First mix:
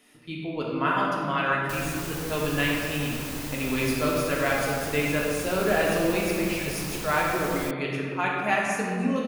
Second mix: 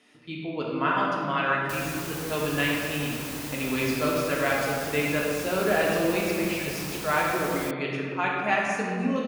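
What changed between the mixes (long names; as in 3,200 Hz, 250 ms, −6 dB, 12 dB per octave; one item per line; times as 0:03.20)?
speech: add low-pass filter 6,400 Hz 12 dB per octave
master: add high-pass filter 110 Hz 6 dB per octave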